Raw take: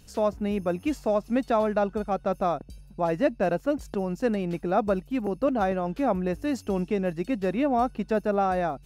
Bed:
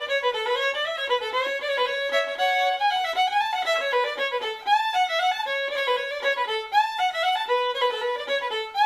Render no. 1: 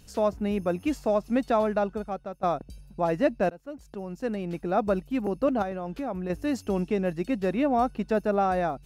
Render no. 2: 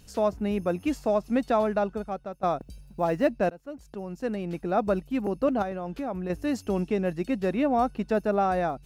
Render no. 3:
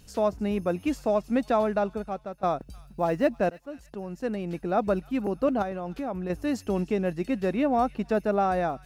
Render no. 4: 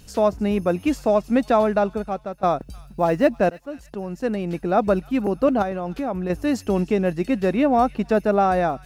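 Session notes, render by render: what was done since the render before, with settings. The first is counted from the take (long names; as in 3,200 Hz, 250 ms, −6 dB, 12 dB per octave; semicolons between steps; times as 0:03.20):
0:01.44–0:02.43: fade out equal-power, to −18.5 dB; 0:03.50–0:04.97: fade in, from −21 dB; 0:05.62–0:06.30: downward compressor 2.5 to 1, threshold −31 dBFS
0:02.60–0:03.28: log-companded quantiser 8 bits
delay with a high-pass on its return 307 ms, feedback 40%, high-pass 1,900 Hz, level −18 dB
level +6 dB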